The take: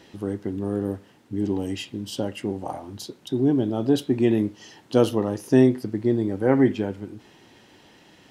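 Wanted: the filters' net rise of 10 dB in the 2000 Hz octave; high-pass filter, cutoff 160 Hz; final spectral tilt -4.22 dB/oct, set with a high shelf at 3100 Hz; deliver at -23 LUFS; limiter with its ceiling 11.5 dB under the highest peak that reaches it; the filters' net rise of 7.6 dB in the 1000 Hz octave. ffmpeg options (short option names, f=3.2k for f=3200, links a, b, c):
-af "highpass=160,equalizer=f=1k:t=o:g=8,equalizer=f=2k:t=o:g=8.5,highshelf=f=3.1k:g=4,volume=4dB,alimiter=limit=-10.5dB:level=0:latency=1"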